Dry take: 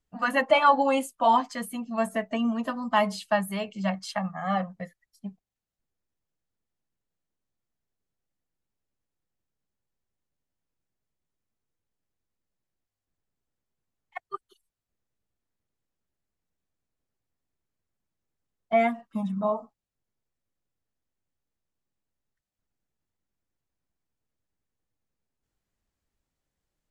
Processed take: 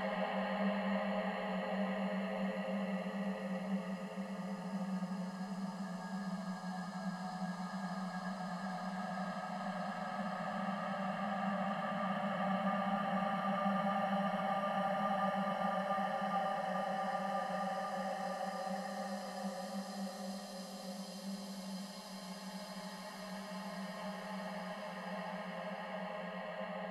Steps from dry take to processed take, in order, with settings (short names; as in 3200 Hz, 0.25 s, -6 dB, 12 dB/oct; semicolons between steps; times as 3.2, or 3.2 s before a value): split-band echo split 360 Hz, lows 0.439 s, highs 0.604 s, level -13.5 dB; Paulstretch 44×, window 0.25 s, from 5.41; gain +8.5 dB